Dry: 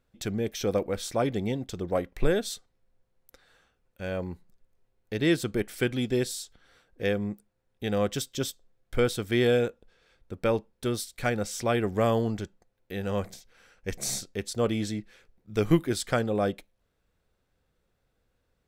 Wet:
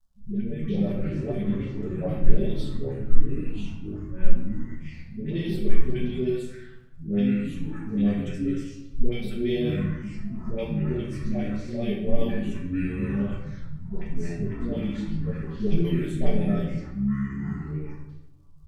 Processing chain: level-controlled noise filter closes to 820 Hz, open at -21.5 dBFS; bass shelf 120 Hz +9 dB; comb 5.2 ms, depth 69%; phase dispersion highs, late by 135 ms, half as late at 480 Hz; crackle 150 per s -53 dBFS; rotary cabinet horn 0.9 Hz, later 5.5 Hz, at 2.24 s; touch-sensitive phaser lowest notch 390 Hz, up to 1.4 kHz, full sweep at -22 dBFS; ever faster or slower copies 121 ms, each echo -5 st, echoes 3; simulated room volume 330 m³, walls mixed, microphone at 1.5 m; trim -8 dB

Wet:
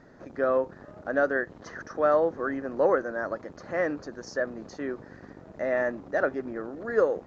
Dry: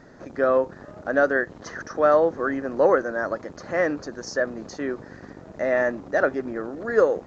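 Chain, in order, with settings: treble shelf 5.4 kHz -7.5 dB; trim -4.5 dB

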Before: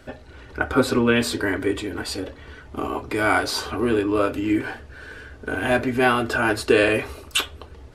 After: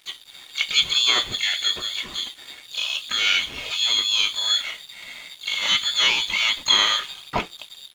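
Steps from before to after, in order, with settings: bass shelf 200 Hz -2 dB; in parallel at -0.5 dB: compression 6:1, threshold -28 dBFS, peak gain reduction 14.5 dB; on the sum: frequency inversion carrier 3.7 kHz; harmony voices +4 st -8 dB, +12 st -14 dB; crossover distortion -41 dBFS; trim -3 dB

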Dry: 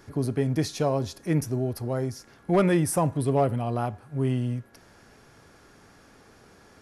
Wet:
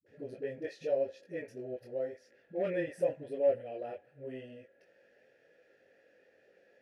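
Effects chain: vowel filter e; phase dispersion highs, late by 64 ms, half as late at 300 Hz; chorus voices 2, 0.86 Hz, delay 21 ms, depth 3.3 ms; trim +4 dB

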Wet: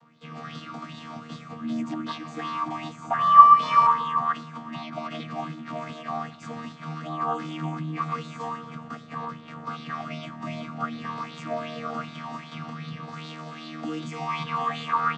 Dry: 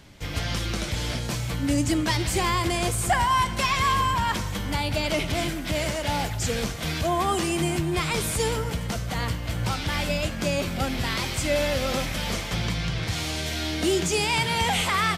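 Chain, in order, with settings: vocoder on a held chord bare fifth, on D#3; peaking EQ 1.2 kHz +13.5 dB 0.23 oct; 3.16–3.87 s: flutter echo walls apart 4.7 m, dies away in 1.3 s; sweeping bell 2.6 Hz 780–3900 Hz +13 dB; trim -9.5 dB

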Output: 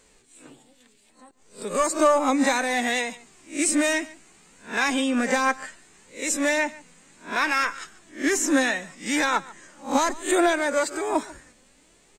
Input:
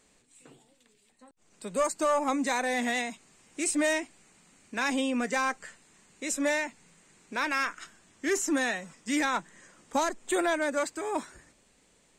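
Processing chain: reverse spectral sustain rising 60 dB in 0.30 s; flange 0.65 Hz, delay 1.9 ms, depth 2.2 ms, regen +48%; delay 142 ms -20.5 dB; trim +9 dB

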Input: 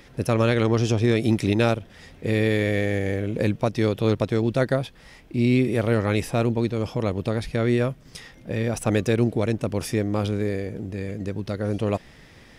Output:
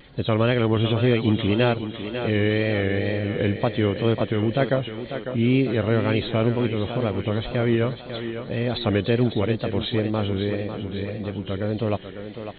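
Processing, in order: knee-point frequency compression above 2.9 kHz 4:1; thinning echo 550 ms, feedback 57%, high-pass 170 Hz, level -8.5 dB; wow and flutter 86 cents

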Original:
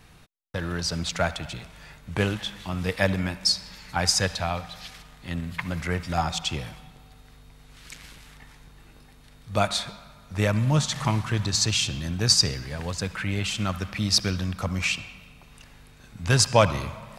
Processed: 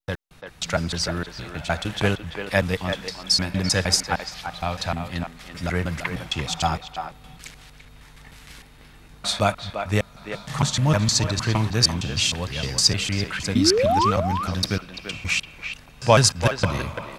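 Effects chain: slices played last to first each 154 ms, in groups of 4; painted sound rise, 13.55–14.11 s, 230–1300 Hz -22 dBFS; speakerphone echo 340 ms, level -7 dB; trim +2.5 dB

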